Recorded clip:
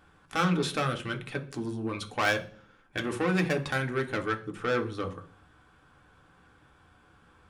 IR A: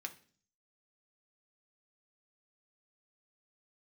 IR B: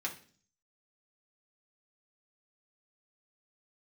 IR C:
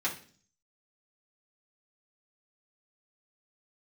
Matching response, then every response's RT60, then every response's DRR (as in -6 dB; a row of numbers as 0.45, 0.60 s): A; 0.45, 0.45, 0.45 s; 3.5, -2.5, -7.0 dB